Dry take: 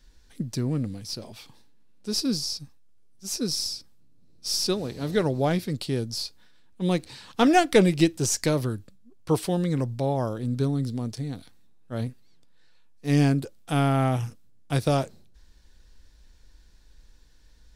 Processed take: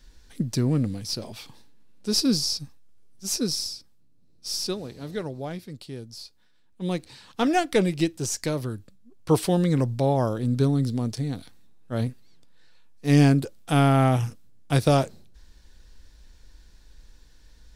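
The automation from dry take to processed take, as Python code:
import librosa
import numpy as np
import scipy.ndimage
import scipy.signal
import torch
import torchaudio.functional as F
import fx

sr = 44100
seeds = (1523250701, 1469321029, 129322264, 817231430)

y = fx.gain(x, sr, db=fx.line((3.31, 4.0), (3.74, -3.0), (4.61, -3.0), (5.48, -10.0), (6.18, -10.0), (6.84, -3.5), (8.6, -3.5), (9.39, 3.5)))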